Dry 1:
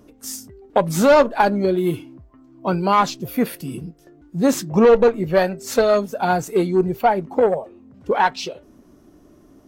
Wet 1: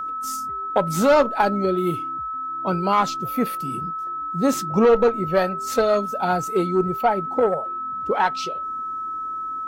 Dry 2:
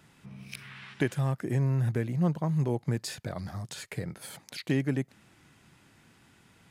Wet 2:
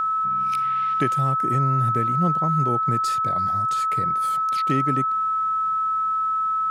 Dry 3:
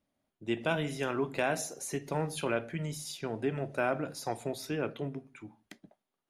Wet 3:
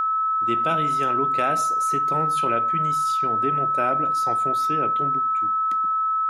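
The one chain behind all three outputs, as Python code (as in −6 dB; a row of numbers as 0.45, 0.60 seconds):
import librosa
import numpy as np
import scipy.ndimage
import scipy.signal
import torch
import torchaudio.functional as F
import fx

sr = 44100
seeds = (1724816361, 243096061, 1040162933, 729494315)

y = x + 10.0 ** (-23.0 / 20.0) * np.sin(2.0 * np.pi * 1300.0 * np.arange(len(x)) / sr)
y = y * 10.0 ** (-22 / 20.0) / np.sqrt(np.mean(np.square(y)))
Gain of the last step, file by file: −3.0, +3.0, +3.5 decibels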